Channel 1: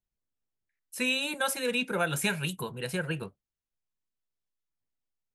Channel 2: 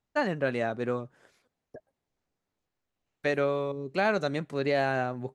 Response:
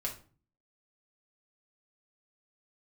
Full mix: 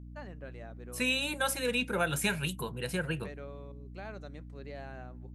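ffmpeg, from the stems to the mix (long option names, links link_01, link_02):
-filter_complex "[0:a]volume=-1.5dB[link_01];[1:a]volume=-19dB[link_02];[link_01][link_02]amix=inputs=2:normalize=0,aeval=exprs='val(0)+0.00562*(sin(2*PI*60*n/s)+sin(2*PI*2*60*n/s)/2+sin(2*PI*3*60*n/s)/3+sin(2*PI*4*60*n/s)/4+sin(2*PI*5*60*n/s)/5)':channel_layout=same"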